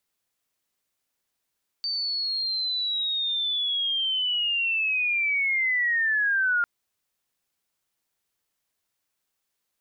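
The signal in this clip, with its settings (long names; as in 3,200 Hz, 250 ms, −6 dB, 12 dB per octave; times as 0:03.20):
glide linear 4,600 Hz → 1,400 Hz −25.5 dBFS → −20 dBFS 4.80 s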